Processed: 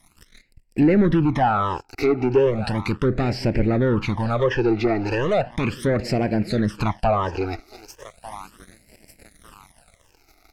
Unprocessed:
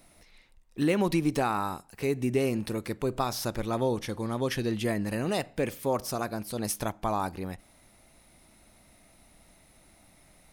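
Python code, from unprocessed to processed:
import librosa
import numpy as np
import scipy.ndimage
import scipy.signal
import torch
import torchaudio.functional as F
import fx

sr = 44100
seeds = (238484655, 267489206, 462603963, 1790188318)

p1 = x + fx.echo_thinned(x, sr, ms=1196, feedback_pct=47, hz=330.0, wet_db=-19.5, dry=0)
p2 = fx.leveller(p1, sr, passes=3)
p3 = fx.phaser_stages(p2, sr, stages=12, low_hz=170.0, high_hz=1200.0, hz=0.36, feedback_pct=20)
p4 = fx.env_lowpass_down(p3, sr, base_hz=1800.0, full_db=-20.0)
y = p4 * 10.0 ** (4.5 / 20.0)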